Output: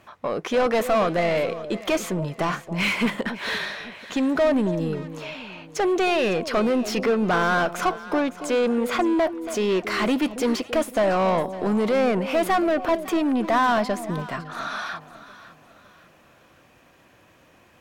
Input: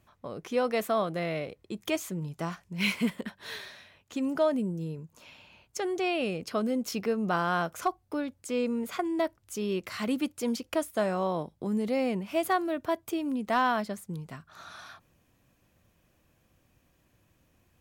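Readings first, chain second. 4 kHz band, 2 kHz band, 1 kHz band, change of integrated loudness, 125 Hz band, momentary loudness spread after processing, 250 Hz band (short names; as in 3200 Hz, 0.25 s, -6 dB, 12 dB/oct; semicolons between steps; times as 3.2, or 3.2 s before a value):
+8.0 dB, +9.0 dB, +7.5 dB, +7.5 dB, +6.5 dB, 9 LU, +7.0 dB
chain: overdrive pedal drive 23 dB, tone 1900 Hz, clips at -16 dBFS; echo with dull and thin repeats by turns 0.278 s, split 830 Hz, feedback 60%, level -11.5 dB; gain +3 dB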